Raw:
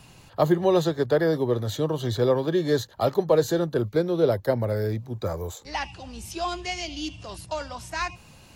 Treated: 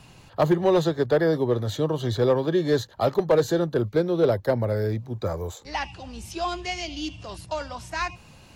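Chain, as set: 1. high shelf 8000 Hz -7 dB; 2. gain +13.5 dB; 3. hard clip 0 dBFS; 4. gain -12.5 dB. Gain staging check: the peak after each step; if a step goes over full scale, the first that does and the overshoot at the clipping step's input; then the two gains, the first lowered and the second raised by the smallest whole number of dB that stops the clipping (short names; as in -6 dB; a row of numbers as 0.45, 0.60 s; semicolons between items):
-8.5, +5.0, 0.0, -12.5 dBFS; step 2, 5.0 dB; step 2 +8.5 dB, step 4 -7.5 dB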